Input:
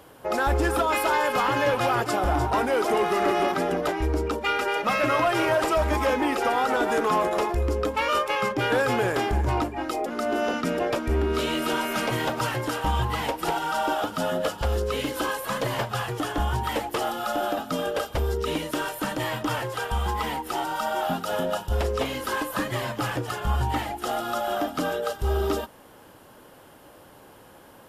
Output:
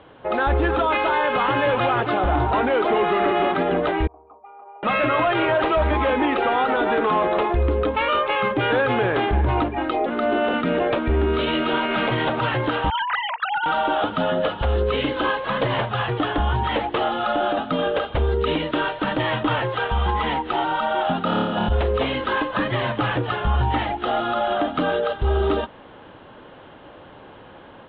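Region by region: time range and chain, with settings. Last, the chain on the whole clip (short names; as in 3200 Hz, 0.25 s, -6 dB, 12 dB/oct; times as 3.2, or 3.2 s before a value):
4.07–4.83 vocal tract filter a + resonator 410 Hz, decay 0.25 s, harmonics odd, mix 70%
12.9–13.66 sine-wave speech + HPF 1000 Hz 24 dB/oct + hard clip -24 dBFS
21.24–21.69 bell 240 Hz +15 dB 1 oct + negative-ratio compressor -28 dBFS, ratio -0.5 + flutter echo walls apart 4.8 m, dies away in 0.97 s
whole clip: steep low-pass 3800 Hz 72 dB/oct; AGC gain up to 4 dB; limiter -15.5 dBFS; gain +2.5 dB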